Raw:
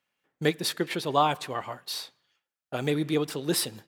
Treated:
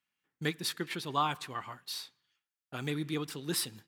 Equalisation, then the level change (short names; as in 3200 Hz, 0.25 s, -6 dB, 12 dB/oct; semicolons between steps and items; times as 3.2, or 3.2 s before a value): bell 580 Hz -10.5 dB 1.1 oct; dynamic EQ 1200 Hz, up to +4 dB, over -42 dBFS, Q 1.6; -5.0 dB